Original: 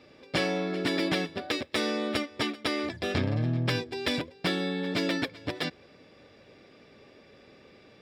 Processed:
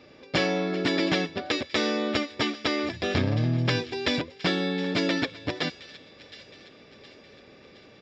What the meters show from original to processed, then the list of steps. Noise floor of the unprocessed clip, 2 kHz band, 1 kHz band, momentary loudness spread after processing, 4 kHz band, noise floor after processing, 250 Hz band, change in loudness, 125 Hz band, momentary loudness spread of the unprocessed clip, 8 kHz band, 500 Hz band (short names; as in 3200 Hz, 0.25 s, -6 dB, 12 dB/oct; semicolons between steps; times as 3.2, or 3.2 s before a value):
-56 dBFS, +3.0 dB, +3.0 dB, 16 LU, +3.0 dB, -52 dBFS, +3.0 dB, +3.0 dB, +3.0 dB, 5 LU, +1.5 dB, +3.0 dB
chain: on a send: thin delay 0.716 s, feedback 49%, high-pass 2300 Hz, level -14 dB; on the sum: downsampling 16000 Hz; gain +3 dB